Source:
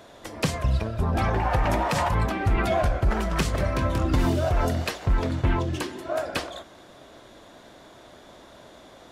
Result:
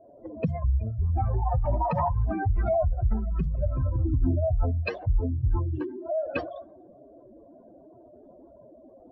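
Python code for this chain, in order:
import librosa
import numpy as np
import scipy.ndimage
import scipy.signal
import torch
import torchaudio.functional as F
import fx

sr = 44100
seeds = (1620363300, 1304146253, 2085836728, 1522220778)

y = fx.spec_expand(x, sr, power=3.0)
y = fx.hum_notches(y, sr, base_hz=50, count=4)
y = fx.env_lowpass(y, sr, base_hz=470.0, full_db=-22.5)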